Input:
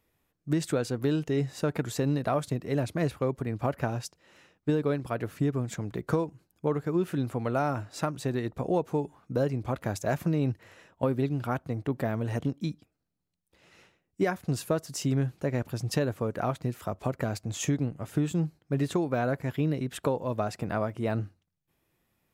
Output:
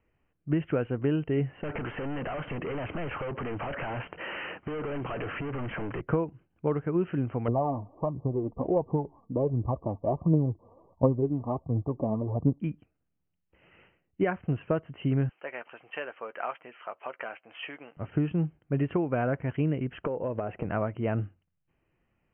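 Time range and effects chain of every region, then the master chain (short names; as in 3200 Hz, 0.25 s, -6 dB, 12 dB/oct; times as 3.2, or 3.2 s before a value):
1.63–6.01 overdrive pedal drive 38 dB, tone 2700 Hz, clips at -14 dBFS + compressor 12:1, threshold -32 dBFS + Doppler distortion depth 0.36 ms
7.48–12.6 brick-wall FIR low-pass 1200 Hz + phaser 1.4 Hz, delay 4.6 ms, feedback 48%
15.29–17.97 HPF 640 Hz + tilt +2.5 dB/oct + doubler 13 ms -12 dB
20.06–20.65 bell 470 Hz +7.5 dB 1.4 oct + compressor 12:1, threshold -26 dBFS
whole clip: Chebyshev low-pass 3100 Hz, order 10; low shelf 64 Hz +8.5 dB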